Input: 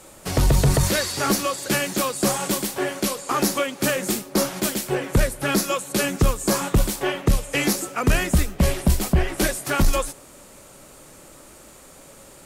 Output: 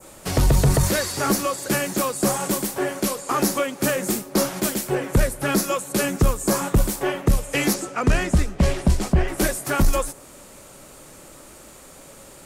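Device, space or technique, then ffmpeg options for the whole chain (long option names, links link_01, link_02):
parallel distortion: -filter_complex "[0:a]adynamicequalizer=threshold=0.00794:dfrequency=3400:dqfactor=0.9:tfrequency=3400:tqfactor=0.9:attack=5:release=100:ratio=0.375:range=3:mode=cutabove:tftype=bell,asplit=2[link_01][link_02];[link_02]asoftclip=type=hard:threshold=-24.5dB,volume=-14dB[link_03];[link_01][link_03]amix=inputs=2:normalize=0,asettb=1/sr,asplit=3[link_04][link_05][link_06];[link_04]atrim=end=7.744[link_07];[link_05]atrim=start=7.74:end=9.28,asetpts=PTS-STARTPTS,afade=type=in:duration=0.004:curve=qsin,afade=type=out:start_time=1.536:duration=0.004:curve=qsin,lowpass=7300[link_08];[link_06]atrim=start=9.276[link_09];[link_07][link_08]acrossfade=duration=0.004:curve1=hsin:curve2=qsin[link_10];[link_10][link_09]acrossfade=duration=0.004:curve1=qsin:curve2=hsin"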